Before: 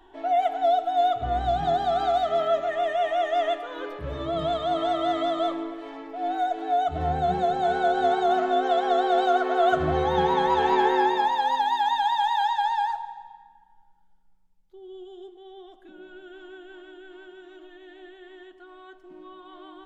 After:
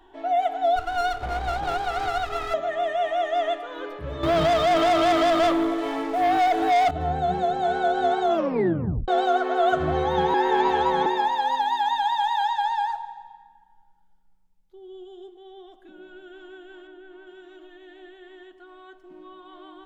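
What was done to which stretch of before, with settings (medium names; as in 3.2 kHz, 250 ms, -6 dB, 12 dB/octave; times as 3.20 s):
0.76–2.54 s: comb filter that takes the minimum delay 2.4 ms
4.23–6.91 s: waveshaping leveller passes 3
8.28 s: tape stop 0.80 s
10.34–11.06 s: reverse
16.87–17.27 s: treble shelf 3.4 kHz -12 dB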